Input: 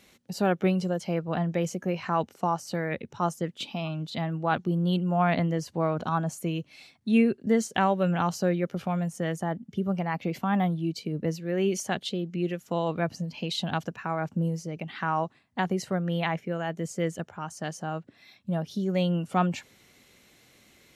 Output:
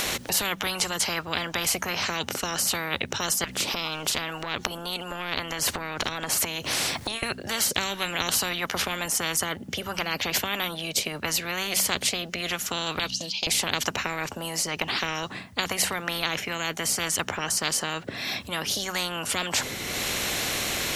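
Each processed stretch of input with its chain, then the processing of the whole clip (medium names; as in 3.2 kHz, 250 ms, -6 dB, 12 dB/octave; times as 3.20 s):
3.44–7.23 s: compression, threshold -40 dBFS + spectrum-flattening compressor 2:1
12.99–13.47 s: gate -35 dBFS, range -17 dB + band-pass filter 3.3 kHz, Q 0.81 + resonant high shelf 2.5 kHz +10.5 dB, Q 3
whole clip: de-hum 63.36 Hz, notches 4; upward compressor, threshold -43 dBFS; spectrum-flattening compressor 10:1; trim +7 dB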